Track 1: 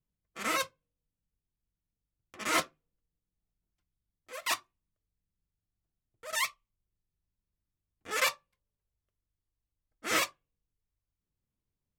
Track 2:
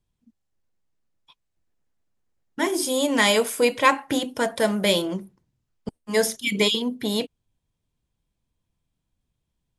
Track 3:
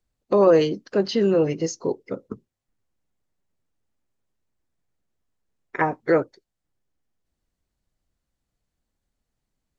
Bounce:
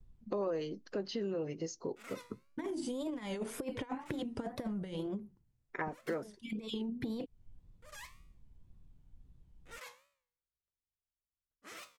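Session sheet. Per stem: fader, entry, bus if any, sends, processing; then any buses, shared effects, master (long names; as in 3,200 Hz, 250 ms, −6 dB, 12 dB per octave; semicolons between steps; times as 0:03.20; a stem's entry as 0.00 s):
−9.5 dB, 1.60 s, bus A, no send, brickwall limiter −24.5 dBFS, peak gain reduction 11.5 dB; tuned comb filter 66 Hz, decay 0.61 s, harmonics all, mix 60%
−0.5 dB, 0.00 s, bus A, no send, parametric band 590 Hz −4.5 dB 0.26 octaves; compressor whose output falls as the input rises −25 dBFS, ratio −0.5; spectral tilt −3.5 dB per octave; automatic ducking −21 dB, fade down 1.50 s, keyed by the third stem
−9.5 dB, 0.00 s, no bus, no send, no processing
bus A: 0.0 dB, tape wow and flutter 140 cents; downward compressor, threshold −32 dBFS, peak gain reduction 16 dB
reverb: not used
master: downward compressor 3 to 1, threshold −36 dBFS, peak gain reduction 11 dB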